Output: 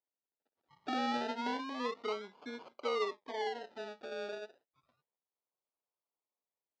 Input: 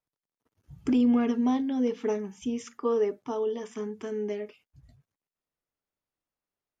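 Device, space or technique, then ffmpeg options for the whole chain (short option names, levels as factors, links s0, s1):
circuit-bent sampling toy: -af "acrusher=samples=33:mix=1:aa=0.000001:lfo=1:lforange=19.8:lforate=0.3,highpass=430,equalizer=f=970:t=q:w=4:g=3,equalizer=f=1600:t=q:w=4:g=-4,equalizer=f=2600:t=q:w=4:g=-5,lowpass=f=4500:w=0.5412,lowpass=f=4500:w=1.3066,volume=0.501"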